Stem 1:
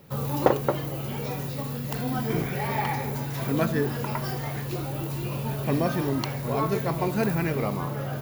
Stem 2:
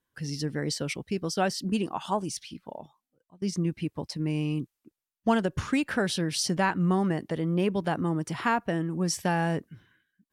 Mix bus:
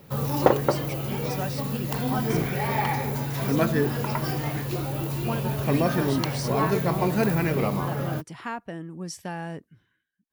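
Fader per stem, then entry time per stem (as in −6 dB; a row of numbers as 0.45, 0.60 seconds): +2.0, −7.5 decibels; 0.00, 0.00 seconds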